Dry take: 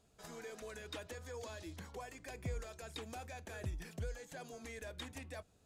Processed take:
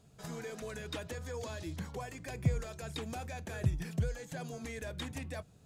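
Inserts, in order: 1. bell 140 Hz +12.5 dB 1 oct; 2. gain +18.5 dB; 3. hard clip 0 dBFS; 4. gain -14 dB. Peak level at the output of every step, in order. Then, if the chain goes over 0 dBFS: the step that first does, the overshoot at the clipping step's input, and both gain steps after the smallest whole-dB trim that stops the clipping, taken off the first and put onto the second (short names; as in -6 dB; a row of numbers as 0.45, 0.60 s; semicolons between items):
-22.5, -4.0, -4.0, -18.0 dBFS; no overload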